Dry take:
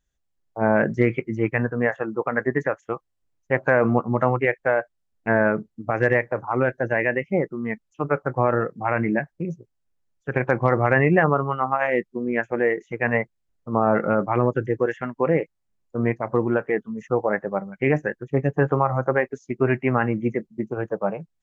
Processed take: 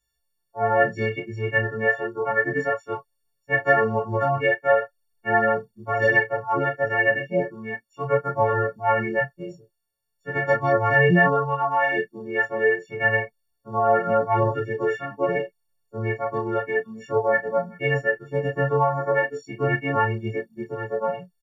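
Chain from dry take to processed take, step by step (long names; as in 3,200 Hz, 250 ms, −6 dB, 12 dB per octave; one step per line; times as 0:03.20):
every partial snapped to a pitch grid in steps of 4 semitones
double-tracking delay 16 ms −5.5 dB
micro pitch shift up and down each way 12 cents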